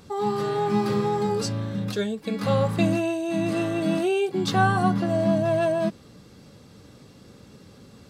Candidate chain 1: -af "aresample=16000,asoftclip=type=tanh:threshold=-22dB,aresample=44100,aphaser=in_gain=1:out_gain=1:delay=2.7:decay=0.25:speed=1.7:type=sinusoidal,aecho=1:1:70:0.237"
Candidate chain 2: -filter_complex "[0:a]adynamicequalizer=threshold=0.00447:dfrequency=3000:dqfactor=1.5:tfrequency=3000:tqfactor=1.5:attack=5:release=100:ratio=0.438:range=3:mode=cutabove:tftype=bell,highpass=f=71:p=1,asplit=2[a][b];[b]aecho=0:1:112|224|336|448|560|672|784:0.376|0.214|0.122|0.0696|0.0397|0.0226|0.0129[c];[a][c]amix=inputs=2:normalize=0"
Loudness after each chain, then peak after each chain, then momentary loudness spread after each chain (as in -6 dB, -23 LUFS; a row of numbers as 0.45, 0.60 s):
-27.0, -24.0 LUFS; -18.0, -8.5 dBFS; 4, 7 LU